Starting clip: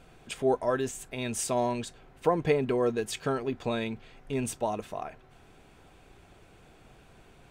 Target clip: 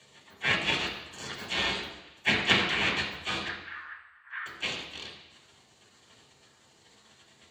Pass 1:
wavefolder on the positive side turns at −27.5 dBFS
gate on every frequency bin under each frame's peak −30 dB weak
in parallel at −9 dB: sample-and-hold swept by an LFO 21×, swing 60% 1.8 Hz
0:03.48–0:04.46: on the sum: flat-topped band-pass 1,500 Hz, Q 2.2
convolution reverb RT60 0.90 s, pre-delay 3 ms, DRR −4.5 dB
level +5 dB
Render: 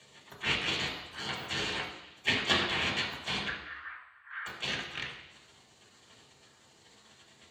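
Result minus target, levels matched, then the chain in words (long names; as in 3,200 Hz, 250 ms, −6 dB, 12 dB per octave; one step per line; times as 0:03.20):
wavefolder on the positive side: distortion −9 dB
wavefolder on the positive side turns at −34.5 dBFS
gate on every frequency bin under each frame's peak −30 dB weak
in parallel at −9 dB: sample-and-hold swept by an LFO 21×, swing 60% 1.8 Hz
0:03.48–0:04.46: on the sum: flat-topped band-pass 1,500 Hz, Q 2.2
convolution reverb RT60 0.90 s, pre-delay 3 ms, DRR −4.5 dB
level +5 dB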